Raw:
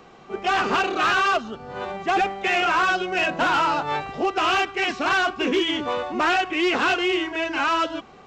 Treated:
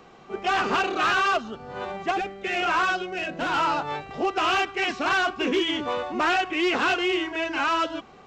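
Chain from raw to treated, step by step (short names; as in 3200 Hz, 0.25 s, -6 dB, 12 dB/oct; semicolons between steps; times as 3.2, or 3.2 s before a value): 2.11–4.11 rotary speaker horn 1.1 Hz; gain -2 dB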